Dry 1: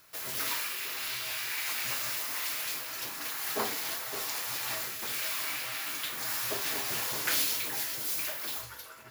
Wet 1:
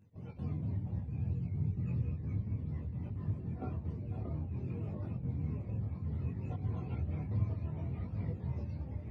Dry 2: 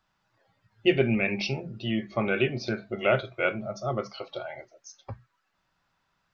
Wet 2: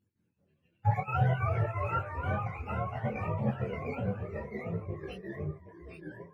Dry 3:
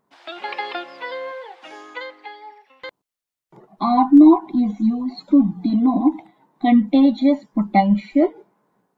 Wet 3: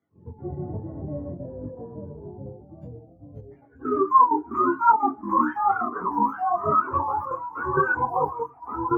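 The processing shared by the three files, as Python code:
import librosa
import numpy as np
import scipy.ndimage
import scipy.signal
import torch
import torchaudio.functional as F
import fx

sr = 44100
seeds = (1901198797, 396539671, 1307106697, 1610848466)

y = fx.octave_mirror(x, sr, pivot_hz=550.0)
y = fx.step_gate(y, sr, bpm=195, pattern='x.xx.xxxx', floor_db=-12.0, edge_ms=4.5)
y = fx.echo_pitch(y, sr, ms=190, semitones=-2, count=3, db_per_echo=-3.0)
y = fx.detune_double(y, sr, cents=21)
y = y * librosa.db_to_amplitude(-1.5)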